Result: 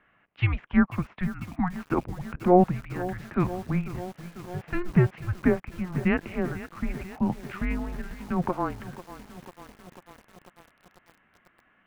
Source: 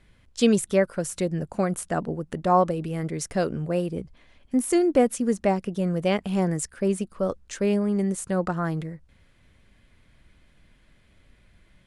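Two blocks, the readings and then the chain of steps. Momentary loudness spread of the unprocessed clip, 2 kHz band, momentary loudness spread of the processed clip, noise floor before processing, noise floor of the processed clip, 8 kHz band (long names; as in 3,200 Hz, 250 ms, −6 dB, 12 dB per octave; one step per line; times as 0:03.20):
8 LU, +1.5 dB, 15 LU, −60 dBFS, −65 dBFS, below −20 dB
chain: single-sideband voice off tune −360 Hz 480–2,900 Hz
time-frequency box erased 0:01.25–0:01.86, 320–660 Hz
feedback echo at a low word length 494 ms, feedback 80%, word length 7 bits, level −14.5 dB
level +3 dB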